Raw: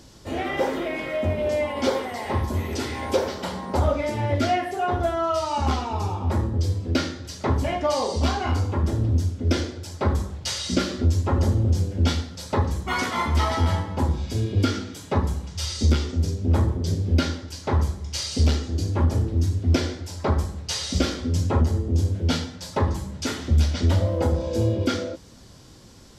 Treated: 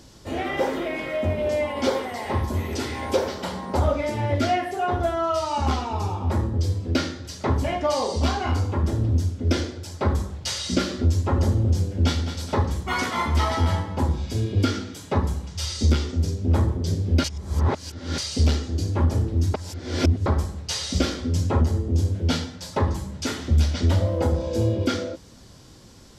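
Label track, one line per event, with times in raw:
11.840000	12.240000	echo throw 210 ms, feedback 50%, level -9.5 dB
17.240000	18.180000	reverse
19.540000	20.260000	reverse

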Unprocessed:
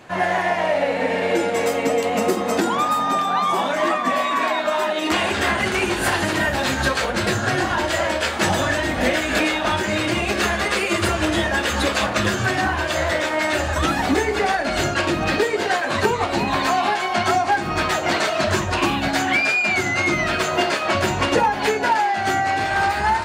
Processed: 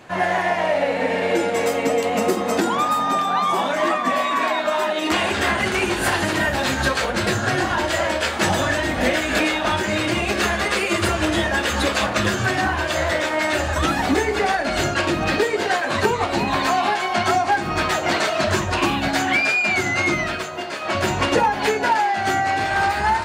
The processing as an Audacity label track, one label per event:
20.100000	21.090000	dip -9.5 dB, fades 0.41 s

